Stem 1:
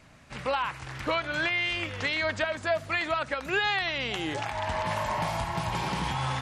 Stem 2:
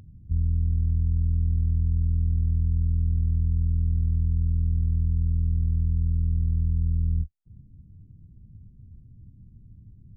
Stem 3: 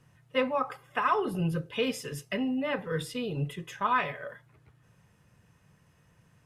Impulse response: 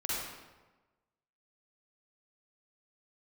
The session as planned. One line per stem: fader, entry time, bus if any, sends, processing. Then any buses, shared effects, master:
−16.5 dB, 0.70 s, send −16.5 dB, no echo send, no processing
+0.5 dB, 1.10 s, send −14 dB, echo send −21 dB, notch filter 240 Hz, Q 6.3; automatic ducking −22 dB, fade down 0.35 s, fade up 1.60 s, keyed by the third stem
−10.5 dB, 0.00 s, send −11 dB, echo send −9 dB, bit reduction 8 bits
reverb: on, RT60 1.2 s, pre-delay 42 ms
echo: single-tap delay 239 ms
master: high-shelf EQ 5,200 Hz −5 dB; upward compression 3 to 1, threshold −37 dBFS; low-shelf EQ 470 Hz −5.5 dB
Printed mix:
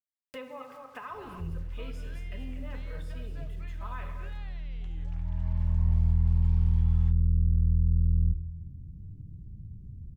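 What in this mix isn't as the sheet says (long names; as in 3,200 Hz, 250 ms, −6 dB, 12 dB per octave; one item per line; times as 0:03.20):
stem 1 −16.5 dB → −27.0 dB
stem 3 −10.5 dB → −18.0 dB
master: missing low-shelf EQ 470 Hz −5.5 dB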